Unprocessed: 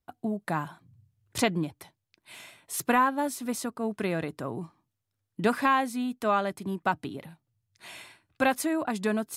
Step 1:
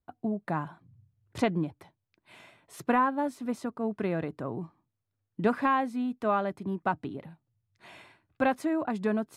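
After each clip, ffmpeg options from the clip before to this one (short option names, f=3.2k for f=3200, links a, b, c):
-af "lowpass=f=1.3k:p=1"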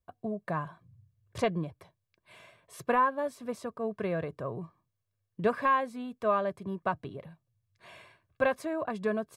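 -af "aecho=1:1:1.8:0.59,volume=-2dB"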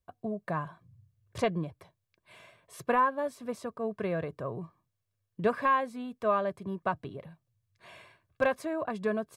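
-af "asoftclip=type=hard:threshold=-15.5dB"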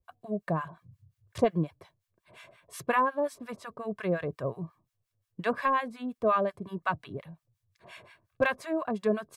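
-filter_complex "[0:a]acrossover=split=890[a][b];[a]aeval=exprs='val(0)*(1-1/2+1/2*cos(2*PI*5.6*n/s))':c=same[c];[b]aeval=exprs='val(0)*(1-1/2-1/2*cos(2*PI*5.6*n/s))':c=same[d];[c][d]amix=inputs=2:normalize=0,volume=6.5dB"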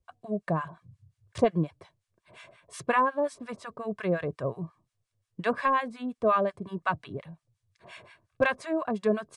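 -af "aresample=22050,aresample=44100,volume=1.5dB"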